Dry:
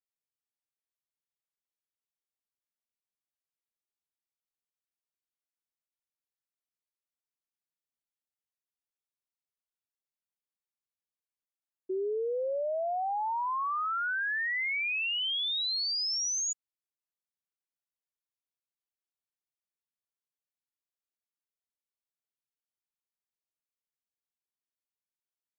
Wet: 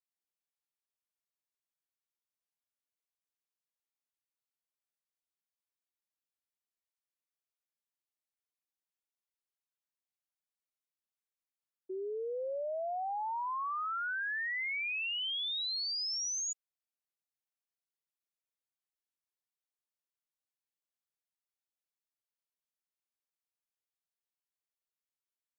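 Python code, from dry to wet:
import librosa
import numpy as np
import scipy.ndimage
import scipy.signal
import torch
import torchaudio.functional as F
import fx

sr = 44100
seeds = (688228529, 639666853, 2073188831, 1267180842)

y = scipy.signal.sosfilt(scipy.signal.butter(2, 360.0, 'highpass', fs=sr, output='sos'), x)
y = F.gain(torch.from_numpy(y), -4.5).numpy()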